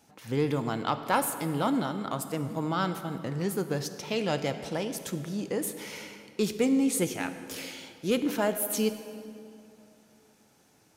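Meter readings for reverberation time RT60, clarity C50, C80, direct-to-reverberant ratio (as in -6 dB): 2.7 s, 10.0 dB, 11.0 dB, 9.0 dB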